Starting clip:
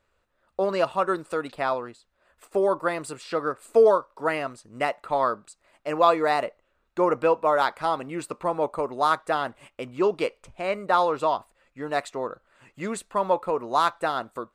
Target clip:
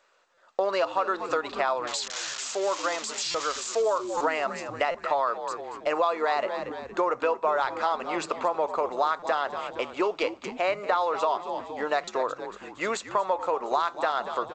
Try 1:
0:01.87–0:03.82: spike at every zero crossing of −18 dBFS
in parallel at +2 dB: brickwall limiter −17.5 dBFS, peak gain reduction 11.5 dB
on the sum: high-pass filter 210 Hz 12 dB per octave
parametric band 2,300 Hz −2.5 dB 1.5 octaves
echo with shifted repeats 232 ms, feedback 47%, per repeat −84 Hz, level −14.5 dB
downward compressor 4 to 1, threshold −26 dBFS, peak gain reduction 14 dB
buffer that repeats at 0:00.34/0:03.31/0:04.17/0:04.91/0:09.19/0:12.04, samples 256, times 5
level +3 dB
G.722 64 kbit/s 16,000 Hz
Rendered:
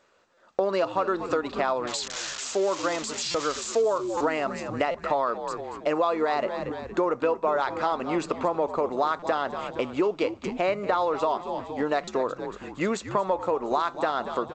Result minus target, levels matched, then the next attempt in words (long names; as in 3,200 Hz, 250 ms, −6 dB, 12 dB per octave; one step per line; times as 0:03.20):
250 Hz band +6.0 dB
0:01.87–0:03.82: spike at every zero crossing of −18 dBFS
in parallel at +2 dB: brickwall limiter −17.5 dBFS, peak gain reduction 11.5 dB
on the sum: high-pass filter 590 Hz 12 dB per octave
parametric band 2,300 Hz −2.5 dB 1.5 octaves
echo with shifted repeats 232 ms, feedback 47%, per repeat −84 Hz, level −14.5 dB
downward compressor 4 to 1, threshold −26 dBFS, peak gain reduction 12 dB
buffer that repeats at 0:00.34/0:03.31/0:04.17/0:04.91/0:09.19/0:12.04, samples 256, times 5
level +3 dB
G.722 64 kbit/s 16,000 Hz